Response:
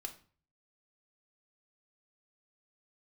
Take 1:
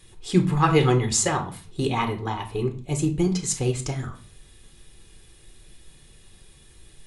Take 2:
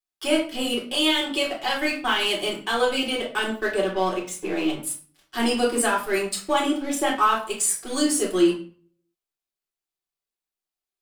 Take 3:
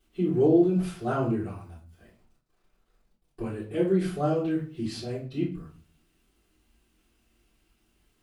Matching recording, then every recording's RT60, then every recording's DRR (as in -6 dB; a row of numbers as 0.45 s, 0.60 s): 1; 0.45 s, 0.40 s, 0.40 s; 4.5 dB, -3.5 dB, -13.5 dB